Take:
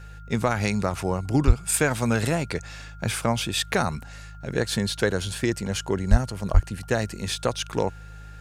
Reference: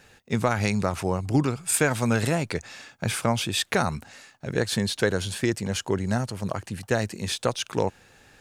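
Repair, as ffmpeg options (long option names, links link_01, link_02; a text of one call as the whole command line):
ffmpeg -i in.wav -filter_complex "[0:a]bandreject=frequency=52.2:width_type=h:width=4,bandreject=frequency=104.4:width_type=h:width=4,bandreject=frequency=156.6:width_type=h:width=4,bandreject=frequency=1400:width=30,asplit=3[link_01][link_02][link_03];[link_01]afade=type=out:start_time=1.46:duration=0.02[link_04];[link_02]highpass=frequency=140:width=0.5412,highpass=frequency=140:width=1.3066,afade=type=in:start_time=1.46:duration=0.02,afade=type=out:start_time=1.58:duration=0.02[link_05];[link_03]afade=type=in:start_time=1.58:duration=0.02[link_06];[link_04][link_05][link_06]amix=inputs=3:normalize=0,asplit=3[link_07][link_08][link_09];[link_07]afade=type=out:start_time=6.1:duration=0.02[link_10];[link_08]highpass=frequency=140:width=0.5412,highpass=frequency=140:width=1.3066,afade=type=in:start_time=6.1:duration=0.02,afade=type=out:start_time=6.22:duration=0.02[link_11];[link_09]afade=type=in:start_time=6.22:duration=0.02[link_12];[link_10][link_11][link_12]amix=inputs=3:normalize=0,asplit=3[link_13][link_14][link_15];[link_13]afade=type=out:start_time=6.53:duration=0.02[link_16];[link_14]highpass=frequency=140:width=0.5412,highpass=frequency=140:width=1.3066,afade=type=in:start_time=6.53:duration=0.02,afade=type=out:start_time=6.65:duration=0.02[link_17];[link_15]afade=type=in:start_time=6.65:duration=0.02[link_18];[link_16][link_17][link_18]amix=inputs=3:normalize=0" out.wav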